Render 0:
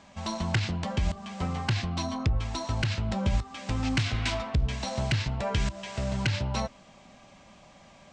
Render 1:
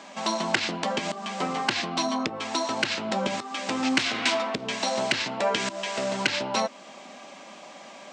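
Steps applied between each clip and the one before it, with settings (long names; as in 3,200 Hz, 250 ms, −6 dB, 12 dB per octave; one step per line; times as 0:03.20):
high-pass filter 250 Hz 24 dB per octave
in parallel at −2.5 dB: downward compressor, threshold −41 dBFS, peak gain reduction 16.5 dB
on the sum: level +5.5 dB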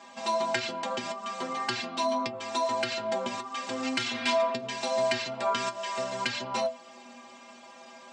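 stiff-string resonator 120 Hz, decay 0.27 s, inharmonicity 0.008
level +5 dB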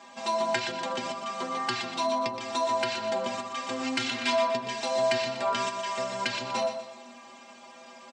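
repeating echo 122 ms, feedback 42%, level −8.5 dB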